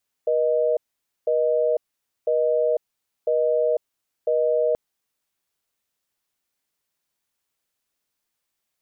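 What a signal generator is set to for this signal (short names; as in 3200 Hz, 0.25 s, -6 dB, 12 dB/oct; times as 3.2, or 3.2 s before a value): call progress tone busy tone, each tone -20.5 dBFS 4.48 s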